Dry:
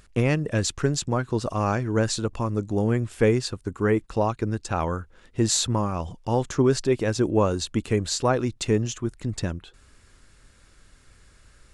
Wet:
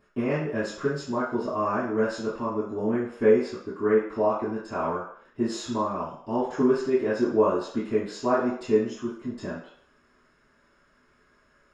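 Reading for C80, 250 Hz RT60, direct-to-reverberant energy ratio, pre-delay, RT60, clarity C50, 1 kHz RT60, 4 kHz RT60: 7.5 dB, 0.45 s, −14.5 dB, 3 ms, 0.65 s, 3.0 dB, 0.65 s, 0.60 s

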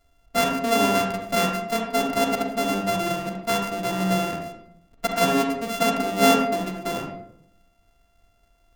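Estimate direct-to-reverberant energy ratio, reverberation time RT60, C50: 1.5 dB, 0.75 s, 3.5 dB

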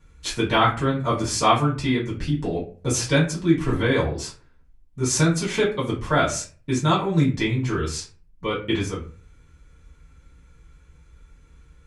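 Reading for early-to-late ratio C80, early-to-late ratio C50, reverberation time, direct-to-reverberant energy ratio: 14.0 dB, 9.0 dB, 0.40 s, −8.0 dB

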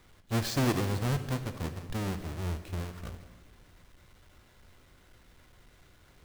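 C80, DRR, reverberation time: 12.0 dB, 8.5 dB, 1.5 s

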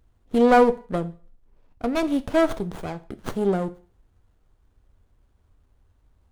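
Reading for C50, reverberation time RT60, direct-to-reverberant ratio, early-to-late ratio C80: 19.0 dB, 0.40 s, 11.5 dB, 23.0 dB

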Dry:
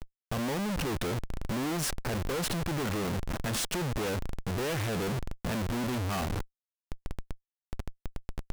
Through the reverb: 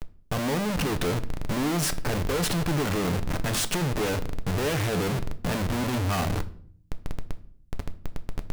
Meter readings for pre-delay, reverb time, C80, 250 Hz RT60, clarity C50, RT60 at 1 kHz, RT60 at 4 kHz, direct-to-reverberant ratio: 7 ms, 0.55 s, 21.0 dB, 0.85 s, 17.0 dB, 0.50 s, 0.40 s, 9.5 dB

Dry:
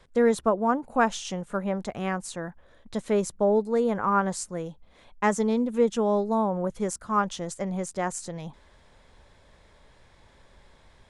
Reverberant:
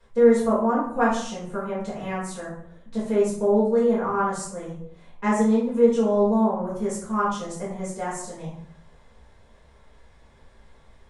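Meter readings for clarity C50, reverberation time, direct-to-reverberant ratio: 2.5 dB, 0.65 s, −9.5 dB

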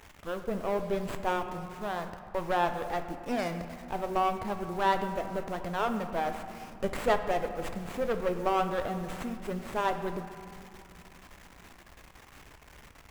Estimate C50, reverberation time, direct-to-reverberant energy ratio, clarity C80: 9.0 dB, 2.7 s, 7.0 dB, 10.0 dB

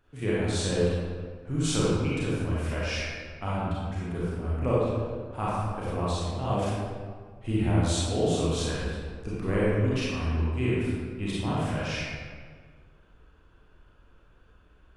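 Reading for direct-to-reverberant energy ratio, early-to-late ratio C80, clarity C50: −8.5 dB, −1.5 dB, −5.0 dB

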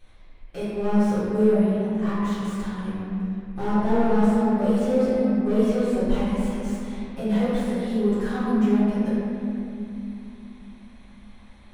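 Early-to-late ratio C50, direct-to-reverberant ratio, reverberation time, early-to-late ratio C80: −4.5 dB, −14.0 dB, 2.9 s, −2.0 dB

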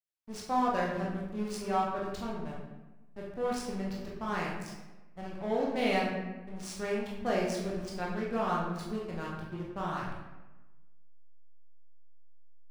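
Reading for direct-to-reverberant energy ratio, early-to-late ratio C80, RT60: −4.5 dB, 4.5 dB, 1.1 s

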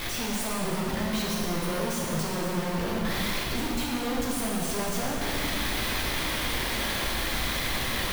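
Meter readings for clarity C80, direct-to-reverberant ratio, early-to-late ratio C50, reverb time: 1.0 dB, −4.5 dB, −1.0 dB, 2.3 s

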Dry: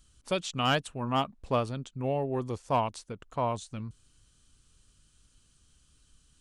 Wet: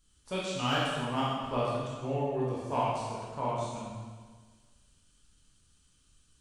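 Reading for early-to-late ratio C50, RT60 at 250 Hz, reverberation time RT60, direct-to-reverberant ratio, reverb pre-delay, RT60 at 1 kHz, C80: −2.0 dB, 1.5 s, 1.5 s, −7.5 dB, 7 ms, 1.5 s, 1.0 dB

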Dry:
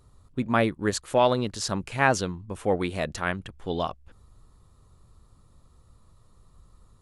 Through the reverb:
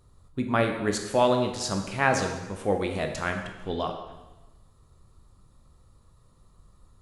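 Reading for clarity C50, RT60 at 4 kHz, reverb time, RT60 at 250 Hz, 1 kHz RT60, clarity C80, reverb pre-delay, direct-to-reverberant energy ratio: 6.5 dB, 1.0 s, 1.1 s, 1.2 s, 1.1 s, 8.0 dB, 7 ms, 4.0 dB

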